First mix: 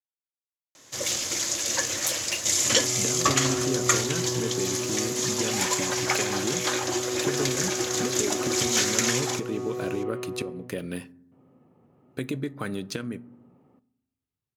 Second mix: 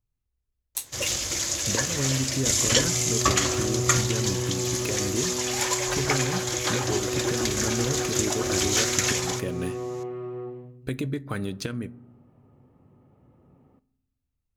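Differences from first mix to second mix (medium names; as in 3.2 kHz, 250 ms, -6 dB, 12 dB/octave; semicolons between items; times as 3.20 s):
speech: entry -1.30 s; master: remove high-pass 150 Hz 12 dB/octave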